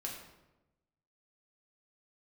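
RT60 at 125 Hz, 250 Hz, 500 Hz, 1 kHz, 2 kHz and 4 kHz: 1.3 s, 1.2 s, 1.1 s, 0.95 s, 0.80 s, 0.65 s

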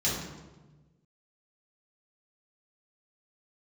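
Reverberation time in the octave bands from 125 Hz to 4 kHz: 1.7 s, 1.5 s, 1.3 s, 1.1 s, 0.90 s, 0.80 s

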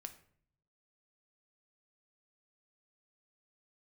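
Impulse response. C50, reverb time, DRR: 13.0 dB, 0.60 s, 7.0 dB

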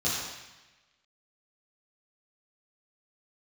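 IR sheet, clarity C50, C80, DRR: -1.0 dB, 1.5 dB, -10.0 dB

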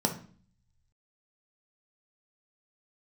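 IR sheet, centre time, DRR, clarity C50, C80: 13 ms, 3.0 dB, 10.5 dB, 16.0 dB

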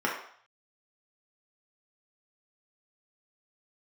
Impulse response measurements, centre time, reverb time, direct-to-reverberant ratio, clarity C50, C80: 36 ms, 0.60 s, -3.5 dB, 4.5 dB, 8.0 dB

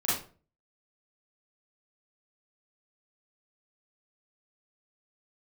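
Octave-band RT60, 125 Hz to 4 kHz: 0.55 s, 0.45 s, 0.45 s, 0.35 s, 0.30 s, 0.30 s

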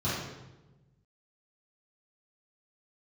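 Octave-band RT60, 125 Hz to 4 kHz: 1.7 s, 1.5 s, 1.2 s, 0.95 s, 0.85 s, 0.80 s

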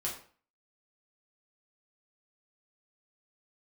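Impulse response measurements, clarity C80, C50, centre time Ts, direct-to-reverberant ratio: 11.0 dB, 7.0 dB, 30 ms, -4.5 dB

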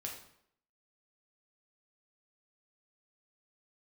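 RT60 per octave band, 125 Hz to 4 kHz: 0.60 s, 0.70 s, 0.70 s, 0.70 s, 0.60 s, 0.55 s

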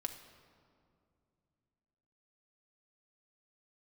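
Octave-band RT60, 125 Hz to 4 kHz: 3.5 s, 3.3 s, 2.6 s, 2.2 s, 1.6 s, 1.3 s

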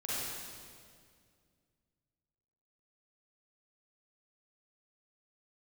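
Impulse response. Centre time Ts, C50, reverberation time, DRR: 157 ms, -6.5 dB, 2.1 s, -9.5 dB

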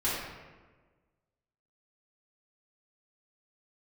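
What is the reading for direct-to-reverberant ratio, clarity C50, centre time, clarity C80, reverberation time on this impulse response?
-10.5 dB, -1.0 dB, 84 ms, 2.0 dB, 1.4 s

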